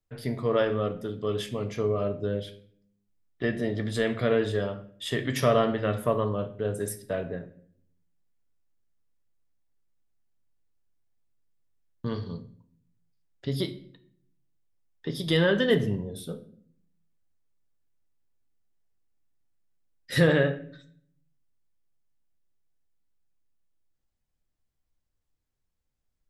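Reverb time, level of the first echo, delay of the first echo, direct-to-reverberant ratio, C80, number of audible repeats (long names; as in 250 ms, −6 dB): 0.60 s, no echo audible, no echo audible, 8.0 dB, 18.0 dB, no echo audible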